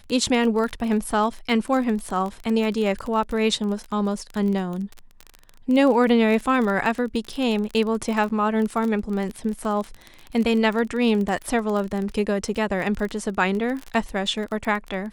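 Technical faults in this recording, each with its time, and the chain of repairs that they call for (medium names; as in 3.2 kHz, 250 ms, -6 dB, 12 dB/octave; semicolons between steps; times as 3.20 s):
crackle 25 per s -26 dBFS
8.29–8.30 s: dropout 8.5 ms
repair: de-click; interpolate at 8.29 s, 8.5 ms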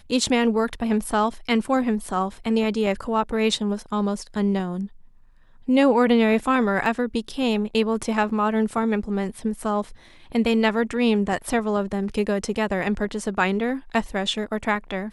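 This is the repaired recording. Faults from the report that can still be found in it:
nothing left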